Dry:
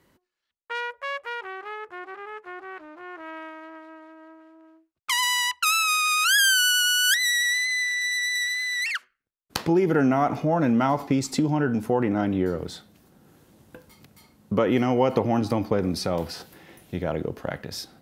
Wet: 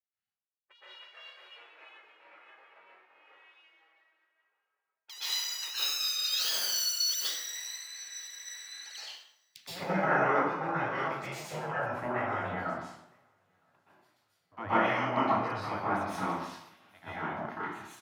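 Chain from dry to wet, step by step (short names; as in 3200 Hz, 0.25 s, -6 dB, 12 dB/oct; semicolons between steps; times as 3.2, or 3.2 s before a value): tracing distortion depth 0.1 ms; Chebyshev high-pass 500 Hz, order 2; in parallel at +2.5 dB: compressor, threshold -30 dBFS, peak gain reduction 14 dB; on the sum: LPF 1200 Hz 6 dB/oct; spectral gate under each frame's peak -15 dB weak; on a send: feedback echo 0.961 s, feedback 52%, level -23 dB; on the sum: plate-style reverb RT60 1 s, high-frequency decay 0.7×, pre-delay 0.11 s, DRR -10 dB; three-band expander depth 70%; gain -6.5 dB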